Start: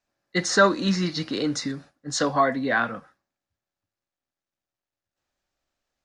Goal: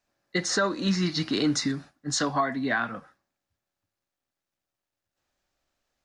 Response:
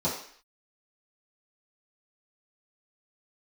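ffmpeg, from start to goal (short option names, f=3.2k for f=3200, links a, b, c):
-filter_complex "[0:a]asettb=1/sr,asplit=3[a][b][c];[a]atrim=end=0.894[d];[b]atrim=start=0.89:end=2.94,asetpts=PTS-STARTPTS,afade=t=in:d=0.004:c=qsin,afade=t=out:st=2.046:d=0.004:c=qsin,equalizer=f=510:t=o:w=0.23:g=-14[e];[c]atrim=start=2.936[f];[d][e]acrossfade=d=0.004:c1=hsin:c2=qsin[g];[g][f]acrossfade=d=0.004:c1=qsin:c2=hsin,alimiter=limit=-17.5dB:level=0:latency=1:release=476,volume=2.5dB"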